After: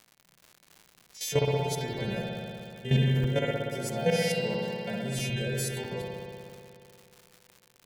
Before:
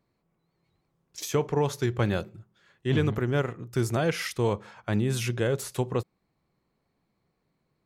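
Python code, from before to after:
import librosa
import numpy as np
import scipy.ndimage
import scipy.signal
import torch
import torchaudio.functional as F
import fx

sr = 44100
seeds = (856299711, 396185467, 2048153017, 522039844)

y = fx.freq_snap(x, sr, grid_st=2)
y = fx.low_shelf(y, sr, hz=380.0, db=-3.0)
y = fx.hum_notches(y, sr, base_hz=50, count=4)
y = fx.vibrato(y, sr, rate_hz=0.43, depth_cents=5.5)
y = fx.bass_treble(y, sr, bass_db=5, treble_db=-10)
y = fx.fixed_phaser(y, sr, hz=320.0, stages=6)
y = fx.level_steps(y, sr, step_db=13)
y = fx.highpass(y, sr, hz=140.0, slope=12, at=(3.15, 5.3))
y = fx.rev_spring(y, sr, rt60_s=2.6, pass_ms=(60,), chirp_ms=30, drr_db=-3.0)
y = fx.dmg_crackle(y, sr, seeds[0], per_s=180.0, level_db=-45.0)
y = fx.buffer_crackle(y, sr, first_s=0.64, period_s=0.65, block=128, kind='zero')
y = F.gain(torch.from_numpy(y), 5.0).numpy()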